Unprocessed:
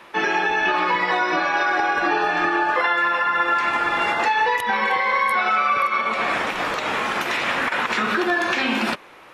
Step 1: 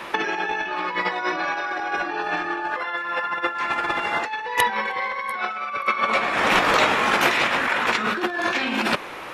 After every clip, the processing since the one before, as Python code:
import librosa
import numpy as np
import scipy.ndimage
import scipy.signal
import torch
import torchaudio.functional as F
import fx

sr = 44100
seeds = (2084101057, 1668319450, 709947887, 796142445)

y = fx.over_compress(x, sr, threshold_db=-26.0, ratio=-0.5)
y = F.gain(torch.from_numpy(y), 4.0).numpy()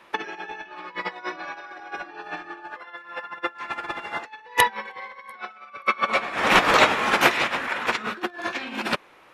y = fx.upward_expand(x, sr, threshold_db=-30.0, expansion=2.5)
y = F.gain(torch.from_numpy(y), 4.0).numpy()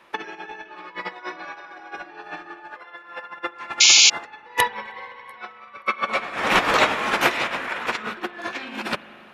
y = fx.rev_spring(x, sr, rt60_s=3.7, pass_ms=(37, 43), chirp_ms=55, drr_db=14.5)
y = fx.spec_paint(y, sr, seeds[0], shape='noise', start_s=3.8, length_s=0.3, low_hz=2100.0, high_hz=7200.0, level_db=-11.0)
y = F.gain(torch.from_numpy(y), -1.5).numpy()